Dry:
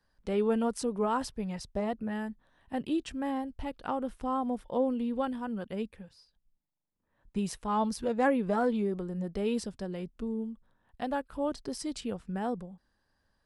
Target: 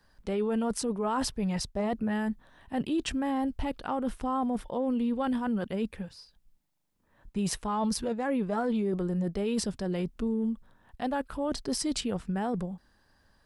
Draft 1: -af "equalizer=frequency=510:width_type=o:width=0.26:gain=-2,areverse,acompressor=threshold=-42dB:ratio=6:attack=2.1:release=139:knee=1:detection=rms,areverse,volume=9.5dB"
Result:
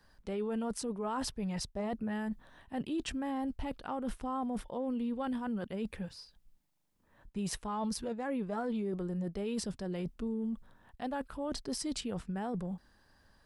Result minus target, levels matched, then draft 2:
downward compressor: peak gain reduction +6.5 dB
-af "equalizer=frequency=510:width_type=o:width=0.26:gain=-2,areverse,acompressor=threshold=-34.5dB:ratio=6:attack=2.1:release=139:knee=1:detection=rms,areverse,volume=9.5dB"

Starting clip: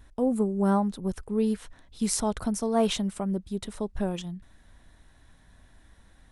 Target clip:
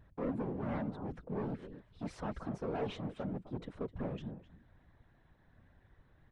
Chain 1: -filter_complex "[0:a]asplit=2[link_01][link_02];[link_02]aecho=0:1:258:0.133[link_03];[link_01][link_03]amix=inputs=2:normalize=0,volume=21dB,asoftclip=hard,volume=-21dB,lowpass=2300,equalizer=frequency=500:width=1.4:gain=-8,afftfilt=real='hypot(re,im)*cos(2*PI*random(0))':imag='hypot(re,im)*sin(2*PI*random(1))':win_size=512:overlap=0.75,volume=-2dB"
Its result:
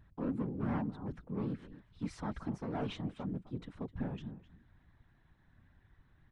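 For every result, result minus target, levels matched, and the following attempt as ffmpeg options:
500 Hz band −4.5 dB; gain into a clipping stage and back: distortion −7 dB
-filter_complex "[0:a]asplit=2[link_01][link_02];[link_02]aecho=0:1:258:0.133[link_03];[link_01][link_03]amix=inputs=2:normalize=0,volume=21dB,asoftclip=hard,volume=-21dB,lowpass=2300,equalizer=frequency=500:width=1.4:gain=3,afftfilt=real='hypot(re,im)*cos(2*PI*random(0))':imag='hypot(re,im)*sin(2*PI*random(1))':win_size=512:overlap=0.75,volume=-2dB"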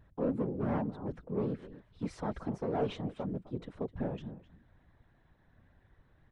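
gain into a clipping stage and back: distortion −7 dB
-filter_complex "[0:a]asplit=2[link_01][link_02];[link_02]aecho=0:1:258:0.133[link_03];[link_01][link_03]amix=inputs=2:normalize=0,volume=28dB,asoftclip=hard,volume=-28dB,lowpass=2300,equalizer=frequency=500:width=1.4:gain=3,afftfilt=real='hypot(re,im)*cos(2*PI*random(0))':imag='hypot(re,im)*sin(2*PI*random(1))':win_size=512:overlap=0.75,volume=-2dB"

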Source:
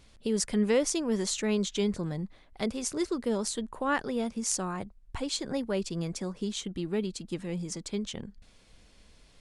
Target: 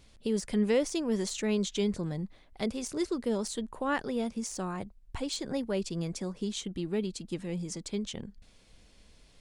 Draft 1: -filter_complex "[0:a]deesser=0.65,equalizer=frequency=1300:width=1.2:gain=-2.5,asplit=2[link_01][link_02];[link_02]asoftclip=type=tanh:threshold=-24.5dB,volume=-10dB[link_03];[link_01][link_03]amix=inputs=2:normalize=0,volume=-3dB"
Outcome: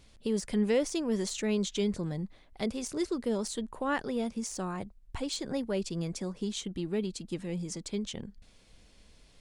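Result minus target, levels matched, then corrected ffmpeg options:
soft clipping: distortion +11 dB
-filter_complex "[0:a]deesser=0.65,equalizer=frequency=1300:width=1.2:gain=-2.5,asplit=2[link_01][link_02];[link_02]asoftclip=type=tanh:threshold=-16.5dB,volume=-10dB[link_03];[link_01][link_03]amix=inputs=2:normalize=0,volume=-3dB"

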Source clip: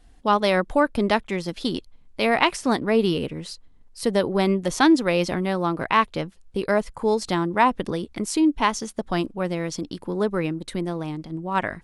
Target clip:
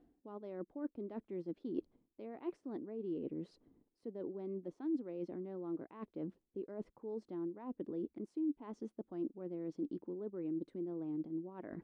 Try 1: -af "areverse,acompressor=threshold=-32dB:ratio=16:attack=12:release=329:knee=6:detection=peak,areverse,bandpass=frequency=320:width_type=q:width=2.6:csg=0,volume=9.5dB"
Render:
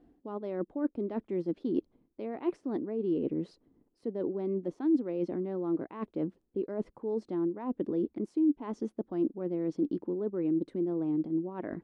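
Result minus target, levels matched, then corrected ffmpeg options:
downward compressor: peak gain reduction −10.5 dB
-af "areverse,acompressor=threshold=-43dB:ratio=16:attack=12:release=329:knee=6:detection=peak,areverse,bandpass=frequency=320:width_type=q:width=2.6:csg=0,volume=9.5dB"

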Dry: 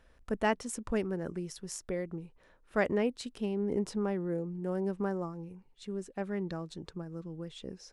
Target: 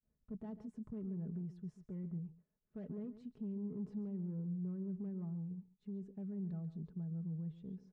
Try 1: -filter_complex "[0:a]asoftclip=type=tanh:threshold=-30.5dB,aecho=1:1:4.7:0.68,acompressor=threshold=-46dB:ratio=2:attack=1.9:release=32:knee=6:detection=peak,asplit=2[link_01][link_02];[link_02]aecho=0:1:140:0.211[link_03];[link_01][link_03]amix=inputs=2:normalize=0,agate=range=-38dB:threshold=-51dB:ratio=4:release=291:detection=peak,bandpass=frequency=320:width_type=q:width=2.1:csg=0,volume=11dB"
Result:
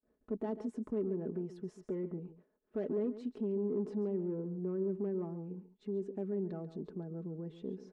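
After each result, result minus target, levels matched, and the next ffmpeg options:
125 Hz band −6.5 dB; downward compressor: peak gain reduction −5 dB
-filter_complex "[0:a]asoftclip=type=tanh:threshold=-30.5dB,aecho=1:1:4.7:0.68,acompressor=threshold=-46dB:ratio=2:attack=1.9:release=32:knee=6:detection=peak,asplit=2[link_01][link_02];[link_02]aecho=0:1:140:0.211[link_03];[link_01][link_03]amix=inputs=2:normalize=0,agate=range=-38dB:threshold=-51dB:ratio=4:release=291:detection=peak,bandpass=frequency=140:width_type=q:width=2.1:csg=0,volume=11dB"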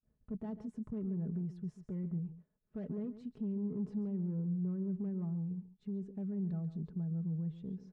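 downward compressor: peak gain reduction −5 dB
-filter_complex "[0:a]asoftclip=type=tanh:threshold=-30.5dB,aecho=1:1:4.7:0.68,acompressor=threshold=-56dB:ratio=2:attack=1.9:release=32:knee=6:detection=peak,asplit=2[link_01][link_02];[link_02]aecho=0:1:140:0.211[link_03];[link_01][link_03]amix=inputs=2:normalize=0,agate=range=-38dB:threshold=-51dB:ratio=4:release=291:detection=peak,bandpass=frequency=140:width_type=q:width=2.1:csg=0,volume=11dB"

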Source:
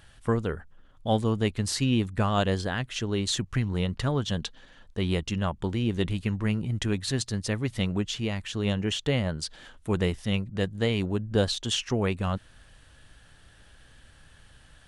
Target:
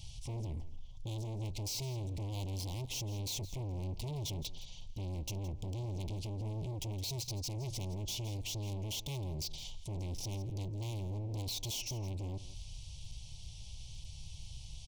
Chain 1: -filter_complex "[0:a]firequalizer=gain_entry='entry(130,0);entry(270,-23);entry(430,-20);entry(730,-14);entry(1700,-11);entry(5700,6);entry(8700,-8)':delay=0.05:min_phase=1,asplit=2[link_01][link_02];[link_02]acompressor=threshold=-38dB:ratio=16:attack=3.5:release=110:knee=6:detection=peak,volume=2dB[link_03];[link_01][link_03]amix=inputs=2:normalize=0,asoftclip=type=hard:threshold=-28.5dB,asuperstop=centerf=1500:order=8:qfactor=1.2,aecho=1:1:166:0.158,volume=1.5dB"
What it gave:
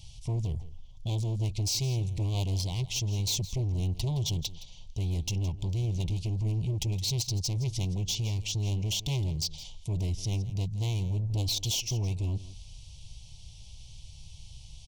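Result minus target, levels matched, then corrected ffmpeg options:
hard clipping: distortion −6 dB
-filter_complex "[0:a]firequalizer=gain_entry='entry(130,0);entry(270,-23);entry(430,-20);entry(730,-14);entry(1700,-11);entry(5700,6);entry(8700,-8)':delay=0.05:min_phase=1,asplit=2[link_01][link_02];[link_02]acompressor=threshold=-38dB:ratio=16:attack=3.5:release=110:knee=6:detection=peak,volume=2dB[link_03];[link_01][link_03]amix=inputs=2:normalize=0,asoftclip=type=hard:threshold=-39.5dB,asuperstop=centerf=1500:order=8:qfactor=1.2,aecho=1:1:166:0.158,volume=1.5dB"

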